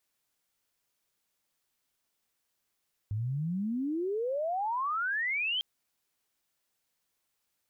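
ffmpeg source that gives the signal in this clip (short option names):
-f lavfi -i "aevalsrc='pow(10,(-29.5+1.5*t/2.5)/20)*sin(2*PI*100*2.5/log(3200/100)*(exp(log(3200/100)*t/2.5)-1))':d=2.5:s=44100"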